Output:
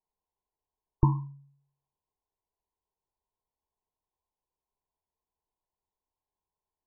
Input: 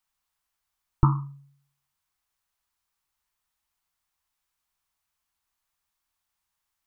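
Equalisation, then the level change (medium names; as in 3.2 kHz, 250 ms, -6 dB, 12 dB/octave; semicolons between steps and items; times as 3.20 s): brick-wall FIR low-pass 1.1 kHz; peaking EQ 430 Hz +10.5 dB 0.5 oct; -3.0 dB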